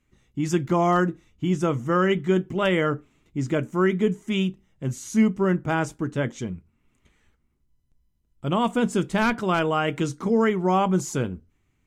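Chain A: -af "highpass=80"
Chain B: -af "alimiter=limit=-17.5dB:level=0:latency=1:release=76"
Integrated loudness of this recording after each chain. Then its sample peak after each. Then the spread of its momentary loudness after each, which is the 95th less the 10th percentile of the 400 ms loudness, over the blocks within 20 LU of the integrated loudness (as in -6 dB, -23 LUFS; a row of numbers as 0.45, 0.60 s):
-24.0, -28.0 LUFS; -10.0, -17.5 dBFS; 11, 7 LU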